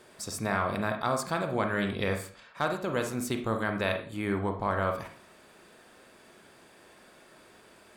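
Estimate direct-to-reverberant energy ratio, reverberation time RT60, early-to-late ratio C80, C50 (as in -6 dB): 5.0 dB, 0.40 s, 12.5 dB, 8.5 dB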